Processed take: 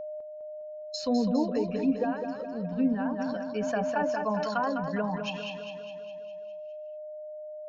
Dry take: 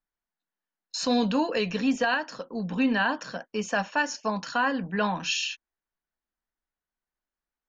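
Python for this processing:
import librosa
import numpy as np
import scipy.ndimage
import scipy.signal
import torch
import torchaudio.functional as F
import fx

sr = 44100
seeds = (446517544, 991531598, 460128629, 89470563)

p1 = fx.bin_expand(x, sr, power=1.5)
p2 = fx.env_lowpass_down(p1, sr, base_hz=680.0, full_db=-24.0)
p3 = p2 + 10.0 ** (-35.0 / 20.0) * np.sin(2.0 * np.pi * 610.0 * np.arange(len(p2)) / sr)
p4 = p3 + fx.echo_feedback(p3, sr, ms=204, feedback_pct=56, wet_db=-7.0, dry=0)
y = fx.sustainer(p4, sr, db_per_s=22.0, at=(3.18, 4.95), fade=0.02)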